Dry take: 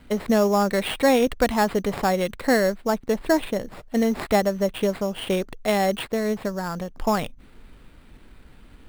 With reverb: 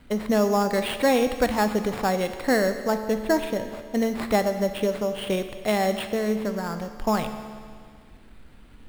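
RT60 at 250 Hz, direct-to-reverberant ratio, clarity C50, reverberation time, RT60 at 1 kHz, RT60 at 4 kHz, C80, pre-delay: 1.9 s, 8.0 dB, 9.0 dB, 1.9 s, 1.9 s, 1.8 s, 10.0 dB, 14 ms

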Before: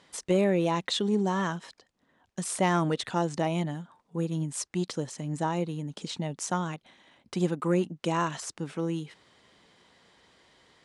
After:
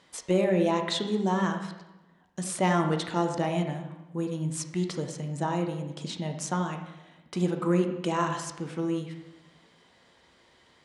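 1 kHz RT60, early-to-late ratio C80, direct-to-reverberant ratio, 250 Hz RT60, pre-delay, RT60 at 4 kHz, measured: 1.0 s, 9.0 dB, 4.0 dB, 1.1 s, 7 ms, 0.85 s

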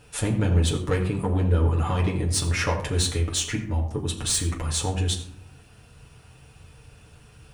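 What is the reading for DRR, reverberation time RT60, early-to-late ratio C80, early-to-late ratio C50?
-2.5 dB, 0.70 s, 11.0 dB, 9.0 dB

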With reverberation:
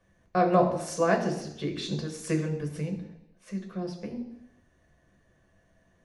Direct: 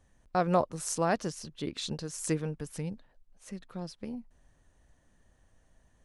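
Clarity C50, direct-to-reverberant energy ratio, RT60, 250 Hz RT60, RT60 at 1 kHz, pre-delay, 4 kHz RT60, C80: 9.0 dB, 2.0 dB, 0.80 s, 0.80 s, 0.80 s, 3 ms, 0.85 s, 11.5 dB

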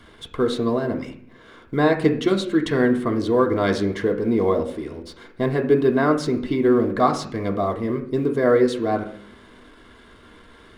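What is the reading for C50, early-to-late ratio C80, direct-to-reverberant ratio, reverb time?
10.5 dB, 14.0 dB, 1.5 dB, 0.60 s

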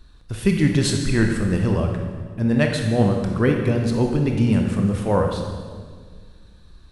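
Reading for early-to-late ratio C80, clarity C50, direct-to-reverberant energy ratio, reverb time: 5.5 dB, 4.0 dB, 2.5 dB, 1.8 s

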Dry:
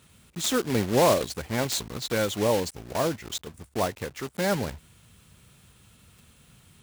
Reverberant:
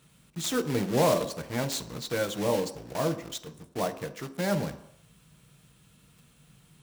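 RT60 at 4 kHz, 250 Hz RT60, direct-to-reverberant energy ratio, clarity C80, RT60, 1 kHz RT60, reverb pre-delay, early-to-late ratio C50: 0.70 s, 0.55 s, 8.0 dB, 16.0 dB, 0.75 s, 0.75 s, 6 ms, 14.0 dB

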